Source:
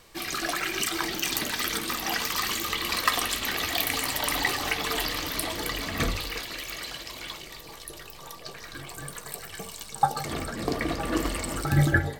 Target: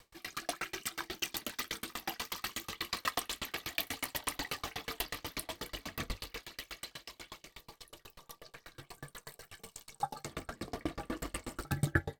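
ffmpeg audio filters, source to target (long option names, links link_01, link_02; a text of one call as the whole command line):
ffmpeg -i in.wav -af "aeval=exprs='val(0)*pow(10,-35*if(lt(mod(8.2*n/s,1),2*abs(8.2)/1000),1-mod(8.2*n/s,1)/(2*abs(8.2)/1000),(mod(8.2*n/s,1)-2*abs(8.2)/1000)/(1-2*abs(8.2)/1000))/20)':channel_layout=same,volume=-2.5dB" out.wav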